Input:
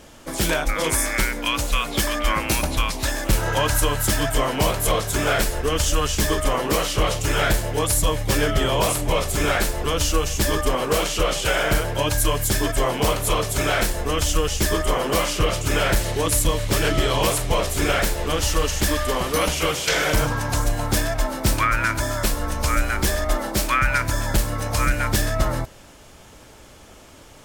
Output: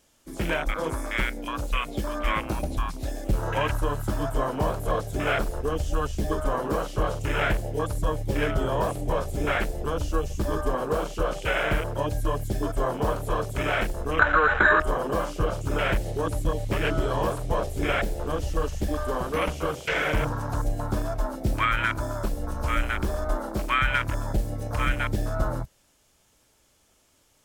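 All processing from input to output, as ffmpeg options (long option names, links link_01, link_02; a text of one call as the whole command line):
ffmpeg -i in.wav -filter_complex "[0:a]asettb=1/sr,asplit=3[link_01][link_02][link_03];[link_01]atrim=end=14.194[link_04];[link_02]atrim=start=14.19:end=14.8,asetpts=PTS-STARTPTS,afade=type=in:duration=0.004:curve=qsin,afade=type=out:start_time=0.606:duration=0.004:curve=qsin,equalizer=frequency=870:width=0.41:gain=14,acompressor=threshold=-17dB:ratio=5:attack=3.2:release=140:knee=1:detection=peak,lowpass=frequency=1500:width_type=q:width=12[link_05];[link_03]atrim=start=14.796[link_06];[link_04][link_05]acrossfade=duration=0.004:curve1=hsin:curve2=qsin[link_07];[link_07][link_06]acrossfade=duration=0.004:curve1=qsin:curve2=hsin,acrossover=split=3900[link_08][link_09];[link_09]acompressor=threshold=-32dB:ratio=4:attack=1:release=60[link_10];[link_08][link_10]amix=inputs=2:normalize=0,afwtdn=0.0631,highshelf=frequency=3700:gain=10.5,volume=-4.5dB" out.wav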